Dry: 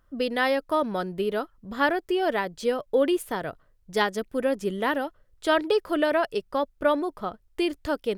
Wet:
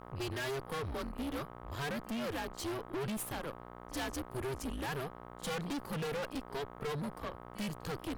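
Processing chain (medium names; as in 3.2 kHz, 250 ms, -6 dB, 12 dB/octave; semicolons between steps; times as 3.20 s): treble shelf 5 kHz +10 dB; on a send: reverse echo 46 ms -23 dB; on the sum: frequency shift -140 Hz; mains buzz 60 Hz, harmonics 21, -43 dBFS 0 dB/octave; valve stage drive 32 dB, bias 0.75; trim -3 dB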